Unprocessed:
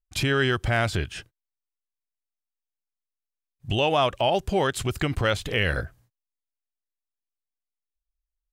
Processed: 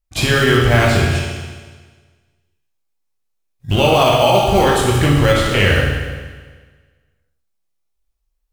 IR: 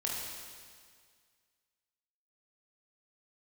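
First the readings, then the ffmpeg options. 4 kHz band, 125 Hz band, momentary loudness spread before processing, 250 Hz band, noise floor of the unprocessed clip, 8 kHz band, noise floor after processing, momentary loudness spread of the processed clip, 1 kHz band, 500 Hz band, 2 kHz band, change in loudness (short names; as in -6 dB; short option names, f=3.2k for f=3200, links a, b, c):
+10.0 dB, +12.5 dB, 9 LU, +11.5 dB, under -85 dBFS, +12.0 dB, -69 dBFS, 13 LU, +10.5 dB, +11.0 dB, +9.5 dB, +10.5 dB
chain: -filter_complex "[0:a]asplit=2[a][b];[b]acrusher=samples=25:mix=1:aa=0.000001,volume=-9dB[c];[a][c]amix=inputs=2:normalize=0[d];[1:a]atrim=start_sample=2205,asetrate=57330,aresample=44100[e];[d][e]afir=irnorm=-1:irlink=0,alimiter=level_in=9.5dB:limit=-1dB:release=50:level=0:latency=1,volume=-1dB"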